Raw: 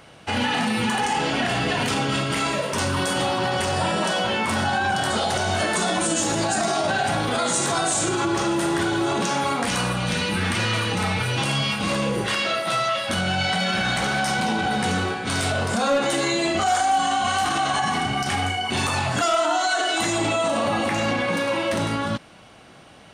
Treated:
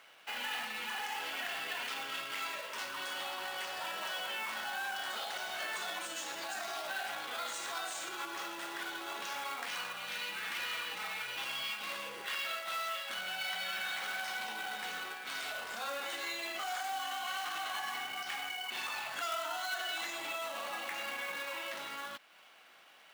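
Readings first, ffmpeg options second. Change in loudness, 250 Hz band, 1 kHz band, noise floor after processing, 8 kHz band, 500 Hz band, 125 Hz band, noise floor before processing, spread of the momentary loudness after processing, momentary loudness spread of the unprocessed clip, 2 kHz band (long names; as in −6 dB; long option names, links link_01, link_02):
−15.5 dB, −30.0 dB, −17.0 dB, −59 dBFS, −17.5 dB, −21.5 dB, below −35 dB, −47 dBFS, 4 LU, 2 LU, −12.0 dB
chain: -filter_complex "[0:a]lowpass=2300,aderivative,asplit=2[link_01][link_02];[link_02]acompressor=threshold=-56dB:ratio=6,volume=-0.5dB[link_03];[link_01][link_03]amix=inputs=2:normalize=0,acrusher=bits=2:mode=log:mix=0:aa=0.000001,highpass=frequency=320:poles=1"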